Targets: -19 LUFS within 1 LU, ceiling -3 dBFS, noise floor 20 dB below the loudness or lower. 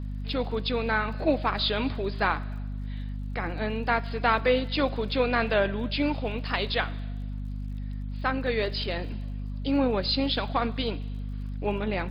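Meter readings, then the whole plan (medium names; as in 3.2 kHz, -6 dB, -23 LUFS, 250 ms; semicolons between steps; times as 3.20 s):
tick rate 38 per s; hum 50 Hz; highest harmonic 250 Hz; hum level -31 dBFS; loudness -28.5 LUFS; peak level -9.5 dBFS; loudness target -19.0 LUFS
-> de-click; de-hum 50 Hz, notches 5; trim +9.5 dB; peak limiter -3 dBFS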